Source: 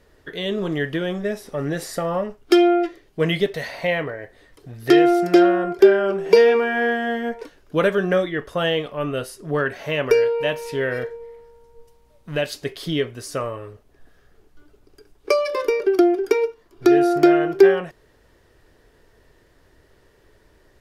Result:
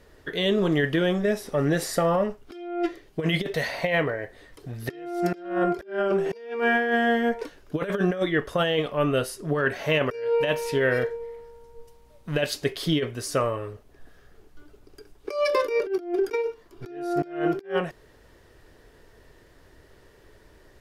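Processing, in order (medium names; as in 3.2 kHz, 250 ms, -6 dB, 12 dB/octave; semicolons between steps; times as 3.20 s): compressor with a negative ratio -22 dBFS, ratio -0.5; trim -2 dB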